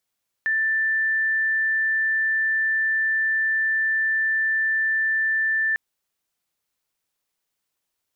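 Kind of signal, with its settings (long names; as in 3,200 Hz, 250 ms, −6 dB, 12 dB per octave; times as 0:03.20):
tone sine 1,770 Hz −19 dBFS 5.30 s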